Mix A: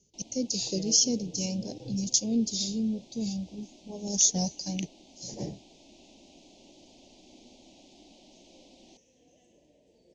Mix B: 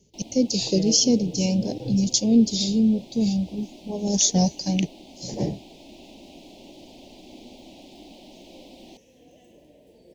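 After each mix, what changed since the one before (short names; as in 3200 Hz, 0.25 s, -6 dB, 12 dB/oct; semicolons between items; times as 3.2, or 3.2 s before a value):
master: remove ladder low-pass 7400 Hz, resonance 55%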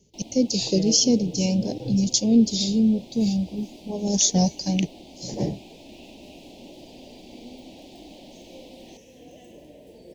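second sound +6.5 dB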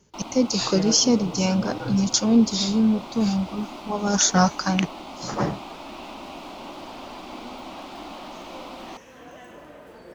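first sound +4.5 dB; master: remove Butterworth band-stop 1300 Hz, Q 0.56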